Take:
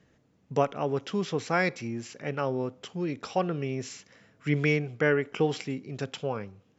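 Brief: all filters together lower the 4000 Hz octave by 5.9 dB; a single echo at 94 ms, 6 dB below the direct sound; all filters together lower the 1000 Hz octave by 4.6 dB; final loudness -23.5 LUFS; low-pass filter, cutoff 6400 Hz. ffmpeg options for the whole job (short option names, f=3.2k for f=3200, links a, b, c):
-af "lowpass=6.4k,equalizer=f=1k:t=o:g=-6.5,equalizer=f=4k:t=o:g=-7.5,aecho=1:1:94:0.501,volume=7dB"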